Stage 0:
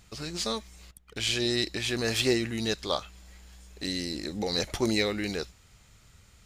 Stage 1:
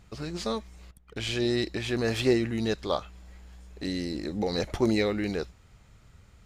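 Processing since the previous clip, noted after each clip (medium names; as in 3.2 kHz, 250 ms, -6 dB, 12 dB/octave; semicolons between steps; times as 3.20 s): treble shelf 2.4 kHz -12 dB; trim +3 dB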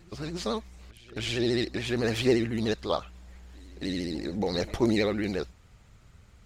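pre-echo 274 ms -22.5 dB; vibrato 14 Hz 98 cents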